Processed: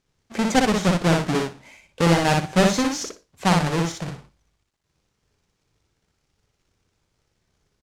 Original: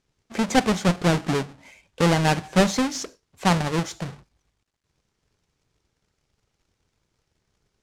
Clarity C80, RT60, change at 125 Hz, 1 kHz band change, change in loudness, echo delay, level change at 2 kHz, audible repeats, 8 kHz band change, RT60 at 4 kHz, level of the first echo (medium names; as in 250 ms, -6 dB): no reverb, no reverb, +1.5 dB, +1.5 dB, +1.5 dB, 60 ms, +2.0 dB, 3, +2.0 dB, no reverb, -3.0 dB